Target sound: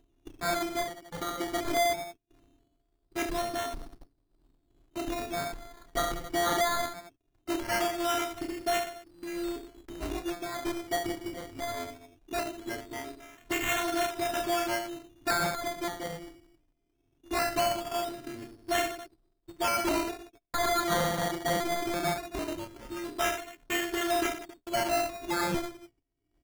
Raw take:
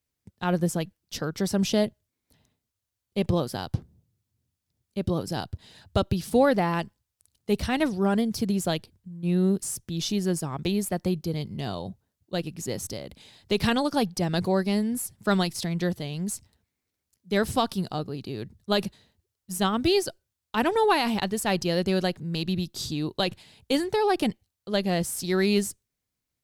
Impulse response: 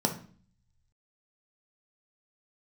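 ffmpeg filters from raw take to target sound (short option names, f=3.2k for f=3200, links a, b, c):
-filter_complex "[0:a]afftfilt=real='hypot(re,im)*cos(PI*b)':imag='0':win_size=512:overlap=0.75,equalizer=f=2.4k:t=o:w=2.3:g=7.5,aecho=1:1:7.2:0.54,aecho=1:1:30|69|119.7|185.6|271.3:0.631|0.398|0.251|0.158|0.1,acompressor=mode=upward:threshold=-34dB:ratio=2.5,aresample=8000,asoftclip=type=tanh:threshold=-25.5dB,aresample=44100,lowshelf=f=92:g=8,acrossover=split=540[a][b];[b]aeval=exprs='sgn(val(0))*max(abs(val(0))-0.00316,0)':c=same[c];[a][c]amix=inputs=2:normalize=0,highpass=f=63:p=1,acrusher=bits=2:mode=log:mix=0:aa=0.000001,adynamicsmooth=sensitivity=6:basefreq=2.1k,acrusher=samples=13:mix=1:aa=0.000001:lfo=1:lforange=7.8:lforate=0.2,volume=2.5dB"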